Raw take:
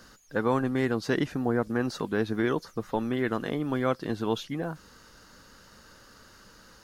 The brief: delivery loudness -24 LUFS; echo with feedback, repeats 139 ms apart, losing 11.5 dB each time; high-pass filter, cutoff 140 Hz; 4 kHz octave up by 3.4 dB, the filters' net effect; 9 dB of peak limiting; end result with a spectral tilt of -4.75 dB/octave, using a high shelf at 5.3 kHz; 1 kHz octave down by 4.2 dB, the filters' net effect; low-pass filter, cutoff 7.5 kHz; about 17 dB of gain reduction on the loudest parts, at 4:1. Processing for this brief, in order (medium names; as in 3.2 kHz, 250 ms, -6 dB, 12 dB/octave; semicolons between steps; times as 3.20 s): high-pass 140 Hz; low-pass 7.5 kHz; peaking EQ 1 kHz -5.5 dB; peaking EQ 4 kHz +6.5 dB; treble shelf 5.3 kHz -4.5 dB; compression 4:1, threshold -44 dBFS; peak limiter -38 dBFS; feedback delay 139 ms, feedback 27%, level -11.5 dB; trim +25.5 dB